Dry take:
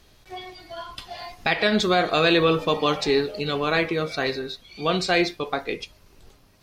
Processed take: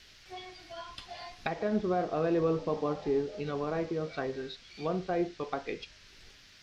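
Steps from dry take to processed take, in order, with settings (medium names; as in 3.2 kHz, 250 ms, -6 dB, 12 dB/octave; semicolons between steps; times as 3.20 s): low-pass that closes with the level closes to 840 Hz, closed at -20.5 dBFS; band noise 1.4–5.6 kHz -50 dBFS; trim -7.5 dB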